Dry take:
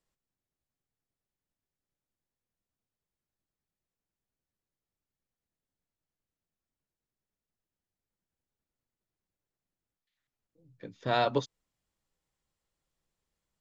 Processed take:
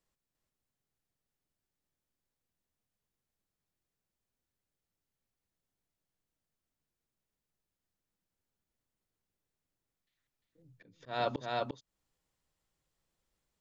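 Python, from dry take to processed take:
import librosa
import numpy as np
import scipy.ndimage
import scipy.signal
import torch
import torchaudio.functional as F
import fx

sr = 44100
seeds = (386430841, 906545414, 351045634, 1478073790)

y = x + 10.0 ** (-3.5 / 20.0) * np.pad(x, (int(349 * sr / 1000.0), 0))[:len(x)]
y = fx.auto_swell(y, sr, attack_ms=309.0)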